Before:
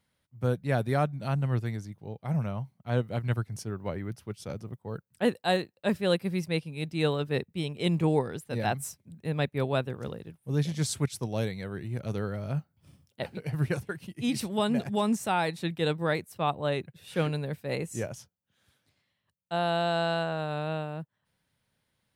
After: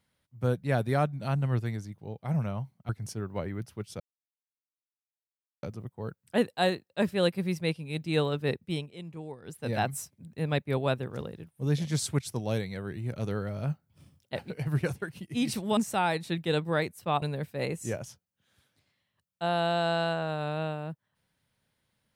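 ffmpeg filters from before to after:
ffmpeg -i in.wav -filter_complex "[0:a]asplit=7[link_01][link_02][link_03][link_04][link_05][link_06][link_07];[link_01]atrim=end=2.892[link_08];[link_02]atrim=start=3.388:end=4.5,asetpts=PTS-STARTPTS,afade=type=out:start_time=1.108:duration=0.004:curve=hsin,apad=pad_dur=1.63[link_09];[link_03]atrim=start=4.5:end=7.79,asetpts=PTS-STARTPTS,afade=type=in:duration=0.004:curve=hsin,afade=type=out:start_time=3.14:duration=0.15:silence=0.158489[link_10];[link_04]atrim=start=7.79:end=8.29,asetpts=PTS-STARTPTS,volume=-16dB[link_11];[link_05]atrim=start=8.29:end=14.642,asetpts=PTS-STARTPTS,afade=type=in:duration=0.15:silence=0.158489[link_12];[link_06]atrim=start=15.098:end=16.552[link_13];[link_07]atrim=start=17.318[link_14];[link_09][link_10][link_11][link_12]concat=n=4:v=0:a=1[link_15];[link_08][link_15]acrossfade=duration=0.004:curve1=hsin:curve2=hsin[link_16];[link_16][link_13]acrossfade=duration=0.004:curve1=hsin:curve2=hsin[link_17];[link_17][link_14]acrossfade=duration=0.004:curve1=hsin:curve2=hsin" out.wav

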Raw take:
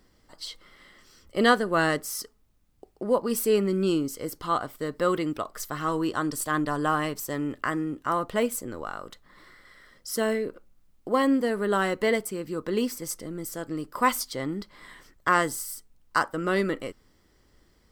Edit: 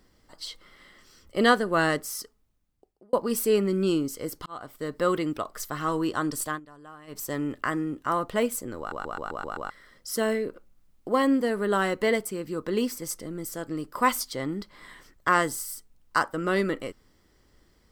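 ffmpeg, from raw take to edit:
ffmpeg -i in.wav -filter_complex "[0:a]asplit=12[link_01][link_02][link_03][link_04][link_05][link_06][link_07][link_08][link_09][link_10][link_11][link_12];[link_01]atrim=end=3.13,asetpts=PTS-STARTPTS,afade=type=out:start_time=1.98:duration=1.15[link_13];[link_02]atrim=start=3.13:end=4.46,asetpts=PTS-STARTPTS,afade=type=in:duration=0.004:curve=hsin,afade=type=out:start_time=1.326:duration=0.004:curve=hsin[link_14];[link_03]atrim=start=4.46:end=6.6,asetpts=PTS-STARTPTS,afade=type=in:duration=0.62:curve=qsin,afade=type=out:start_time=1.95:duration=0.19:curve=qsin:silence=0.0841395[link_15];[link_04]atrim=start=6.6:end=7.07,asetpts=PTS-STARTPTS,volume=-21.5dB[link_16];[link_05]atrim=start=7.07:end=8.922,asetpts=PTS-STARTPTS,afade=type=in:duration=0.19:curve=qsin:silence=0.0841395[link_17];[link_06]atrim=start=8.788:end=8.922[link_18];[link_07]atrim=start=8.788:end=8.922[link_19];[link_08]atrim=start=8.788:end=8.922[link_20];[link_09]atrim=start=8.788:end=8.922[link_21];[link_10]atrim=start=8.788:end=8.922[link_22];[link_11]atrim=start=8.788:end=8.922[link_23];[link_12]atrim=start=9.698[link_24];[link_13][link_14][link_15][link_16][link_17]concat=n=5:v=0:a=1[link_25];[link_25][link_18]acrossfade=duration=0.004:curve1=hsin:curve2=hsin[link_26];[link_26][link_19]acrossfade=duration=0.004:curve1=hsin:curve2=hsin[link_27];[link_27][link_20]acrossfade=duration=0.004:curve1=hsin:curve2=hsin[link_28];[link_28][link_21]acrossfade=duration=0.004:curve1=hsin:curve2=hsin[link_29];[link_29][link_22]acrossfade=duration=0.004:curve1=hsin:curve2=hsin[link_30];[link_30][link_23]acrossfade=duration=0.004:curve1=hsin:curve2=hsin[link_31];[link_31][link_24]acrossfade=duration=0.004:curve1=hsin:curve2=hsin" out.wav

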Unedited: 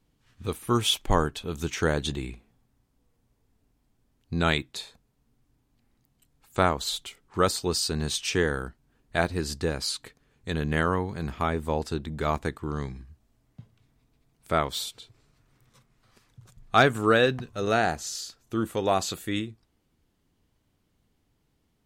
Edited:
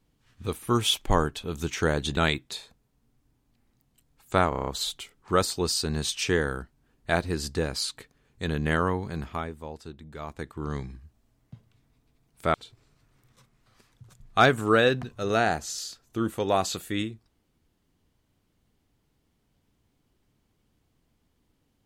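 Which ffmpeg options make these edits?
ffmpeg -i in.wav -filter_complex "[0:a]asplit=11[link_01][link_02][link_03][link_04][link_05][link_06][link_07][link_08][link_09][link_10][link_11];[link_01]atrim=end=2.172[link_12];[link_02]atrim=start=4.408:end=6.762[link_13];[link_03]atrim=start=6.728:end=6.762[link_14];[link_04]atrim=start=6.728:end=6.762[link_15];[link_05]atrim=start=6.728:end=6.762[link_16];[link_06]atrim=start=6.728:end=6.762[link_17];[link_07]atrim=start=6.728:end=6.762[link_18];[link_08]atrim=start=6.728:end=11.63,asetpts=PTS-STARTPTS,afade=type=out:start_time=4.422:duration=0.48:silence=0.266073[link_19];[link_09]atrim=start=11.63:end=12.33,asetpts=PTS-STARTPTS,volume=-11.5dB[link_20];[link_10]atrim=start=12.33:end=14.602,asetpts=PTS-STARTPTS,afade=type=in:duration=0.48:silence=0.266073[link_21];[link_11]atrim=start=14.908[link_22];[link_12][link_13]acrossfade=duration=0.004:curve1=hsin:curve2=hsin[link_23];[link_23][link_14]acrossfade=duration=0.004:curve1=hsin:curve2=hsin[link_24];[link_24][link_15]acrossfade=duration=0.004:curve1=hsin:curve2=hsin[link_25];[link_25][link_16]acrossfade=duration=0.004:curve1=hsin:curve2=hsin[link_26];[link_26][link_17]acrossfade=duration=0.004:curve1=hsin:curve2=hsin[link_27];[link_27][link_18]acrossfade=duration=0.004:curve1=hsin:curve2=hsin[link_28];[link_19][link_20][link_21]concat=n=3:v=0:a=1[link_29];[link_28][link_29]acrossfade=duration=0.004:curve1=hsin:curve2=hsin[link_30];[link_30][link_22]acrossfade=duration=0.004:curve1=hsin:curve2=hsin" out.wav

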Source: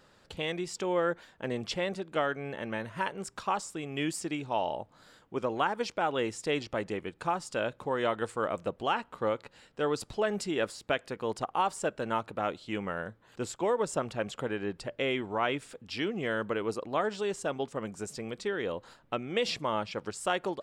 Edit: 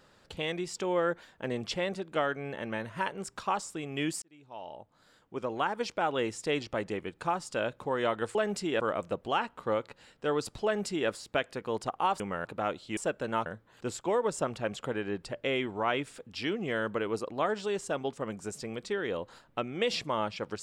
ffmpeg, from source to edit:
ffmpeg -i in.wav -filter_complex "[0:a]asplit=8[link_01][link_02][link_03][link_04][link_05][link_06][link_07][link_08];[link_01]atrim=end=4.22,asetpts=PTS-STARTPTS,afade=type=out:start_time=4.216:duration=0.004:curve=hsin[link_09];[link_02]atrim=start=4.22:end=8.352,asetpts=PTS-STARTPTS,afade=type=in:duration=1.7[link_10];[link_03]atrim=start=10.188:end=10.642[link_11];[link_04]atrim=start=8.348:end=11.752[link_12];[link_05]atrim=start=12.758:end=13.012[link_13];[link_06]atrim=start=12.238:end=12.762[link_14];[link_07]atrim=start=11.748:end=12.242[link_15];[link_08]atrim=start=13.008[link_16];[link_09][link_10]concat=n=2:v=0:a=1[link_17];[link_17][link_11]acrossfade=duration=0.004:curve1=hsin:curve2=hsin[link_18];[link_18][link_12]acrossfade=duration=0.004:curve1=hsin:curve2=hsin[link_19];[link_19][link_13]acrossfade=duration=0.004:curve1=hsin:curve2=hsin[link_20];[link_20][link_14]acrossfade=duration=0.004:curve1=hsin:curve2=hsin[link_21];[link_21][link_15]acrossfade=duration=0.004:curve1=hsin:curve2=hsin[link_22];[link_22][link_16]acrossfade=duration=0.004:curve1=hsin:curve2=hsin" out.wav

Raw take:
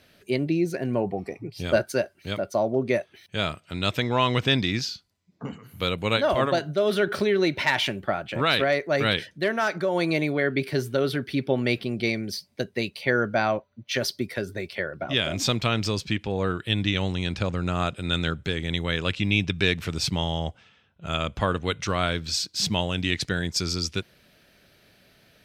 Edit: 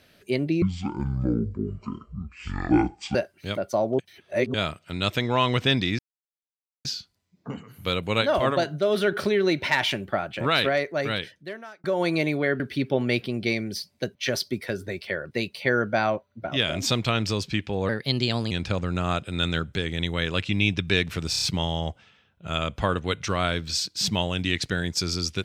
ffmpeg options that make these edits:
ffmpeg -i in.wav -filter_complex "[0:a]asplit=17[link_01][link_02][link_03][link_04][link_05][link_06][link_07][link_08][link_09][link_10][link_11][link_12][link_13][link_14][link_15][link_16][link_17];[link_01]atrim=end=0.624[link_18];[link_02]atrim=start=0.62:end=1.96,asetpts=PTS-STARTPTS,asetrate=23373,aresample=44100,atrim=end_sample=111498,asetpts=PTS-STARTPTS[link_19];[link_03]atrim=start=1.956:end=2.802[link_20];[link_04]atrim=start=2.798:end=3.352,asetpts=PTS-STARTPTS,areverse[link_21];[link_05]atrim=start=3.348:end=4.8,asetpts=PTS-STARTPTS,afade=type=out:start_time=1.448:duration=0.004:curve=hsin,apad=pad_dur=0.86[link_22];[link_06]atrim=start=4.8:end=9.79,asetpts=PTS-STARTPTS,afade=type=in:duration=0.004:curve=hsin,afade=type=out:start_time=3.77:duration=1.22[link_23];[link_07]atrim=start=9.79:end=10.552,asetpts=PTS-STARTPTS,afade=type=in:duration=0.004:curve=hsin[link_24];[link_08]atrim=start=11.168:end=12.722[link_25];[link_09]atrim=start=13.828:end=14.992[link_26];[link_10]atrim=start=12.718:end=13.832[link_27];[link_11]atrim=start=14.988:end=16.464[link_28];[link_12]atrim=start=16.46:end=17.22,asetpts=PTS-STARTPTS,asetrate=53802,aresample=44100,atrim=end_sample=27472,asetpts=PTS-STARTPTS[link_29];[link_13]atrim=start=17.216:end=20.042[link_30];[link_14]atrim=start=20.008:end=20.042[link_31];[link_15]atrim=start=20.008:end=20.042[link_32];[link_16]atrim=start=20.008:end=20.042[link_33];[link_17]atrim=start=20.008[link_34];[link_18][link_19]acrossfade=duration=0.004:curve1=hsin:curve2=hsin[link_35];[link_35][link_20]acrossfade=duration=0.004:curve1=hsin:curve2=hsin[link_36];[link_36][link_21]acrossfade=duration=0.004:curve1=hsin:curve2=hsin[link_37];[link_22][link_23][link_24]concat=n=3:v=0:a=1[link_38];[link_37][link_38]acrossfade=duration=0.004:curve1=hsin:curve2=hsin[link_39];[link_39][link_25]acrossfade=duration=0.004:curve1=hsin:curve2=hsin[link_40];[link_40][link_26]acrossfade=duration=0.004:curve1=hsin:curve2=hsin[link_41];[link_41][link_27]acrossfade=duration=0.004:curve1=hsin:curve2=hsin[link_42];[link_42][link_28]acrossfade=duration=0.004:curve1=hsin:curve2=hsin[link_43];[link_43][link_29]acrossfade=duration=0.004:curve1=hsin:curve2=hsin[link_44];[link_44][link_30]acrossfade=duration=0.004:curve1=hsin:curve2=hsin[link_45];[link_45][link_31]acrossfade=duration=0.004:curve1=hsin:curve2=hsin[link_46];[link_46][link_32]acrossfade=duration=0.004:curve1=hsin:curve2=hsin[link_47];[link_47][link_33]acrossfade=duration=0.004:curve1=hsin:curve2=hsin[link_48];[link_48][link_34]acrossfade=duration=0.004:curve1=hsin:curve2=hsin" out.wav

